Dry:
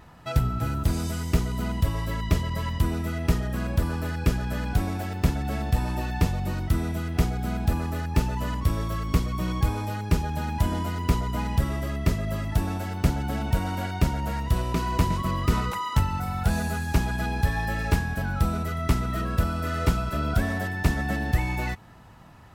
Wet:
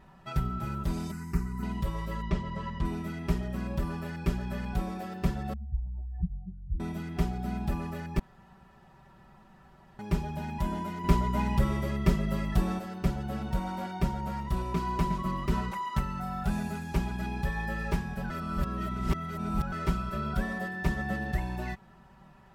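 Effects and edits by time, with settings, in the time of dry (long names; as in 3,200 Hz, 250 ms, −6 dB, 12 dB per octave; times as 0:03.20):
0:01.11–0:01.63: phaser with its sweep stopped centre 1,400 Hz, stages 4
0:02.22–0:02.85: high-frequency loss of the air 88 metres
0:05.53–0:06.80: expanding power law on the bin magnitudes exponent 3.8
0:08.19–0:09.99: fill with room tone
0:11.04–0:12.79: clip gain +5 dB
0:18.30–0:19.72: reverse
whole clip: high-shelf EQ 3,700 Hz −8 dB; comb filter 5.2 ms, depth 100%; level −7.5 dB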